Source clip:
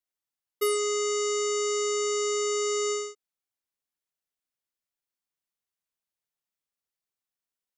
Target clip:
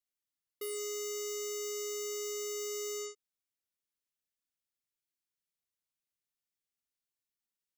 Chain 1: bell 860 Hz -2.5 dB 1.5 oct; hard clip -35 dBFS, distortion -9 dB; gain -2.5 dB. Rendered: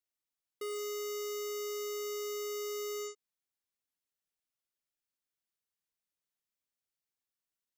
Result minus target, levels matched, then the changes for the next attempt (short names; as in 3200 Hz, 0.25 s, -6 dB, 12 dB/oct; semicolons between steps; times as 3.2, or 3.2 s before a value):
1000 Hz band +6.5 dB
change: bell 860 Hz -8.5 dB 1.5 oct